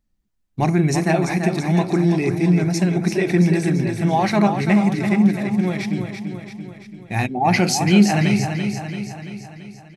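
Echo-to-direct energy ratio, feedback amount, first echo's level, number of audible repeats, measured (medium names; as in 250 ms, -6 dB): -5.5 dB, 57%, -7.0 dB, 6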